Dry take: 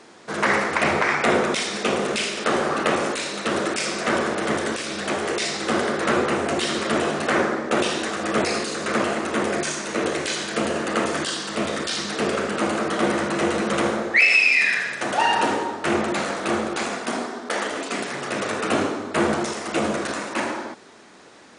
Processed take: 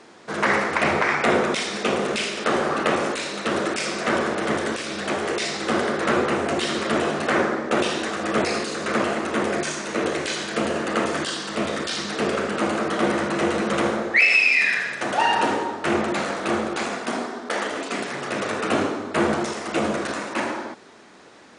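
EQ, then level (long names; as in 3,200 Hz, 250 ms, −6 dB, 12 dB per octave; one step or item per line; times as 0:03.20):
high-shelf EQ 6,900 Hz −5.5 dB
0.0 dB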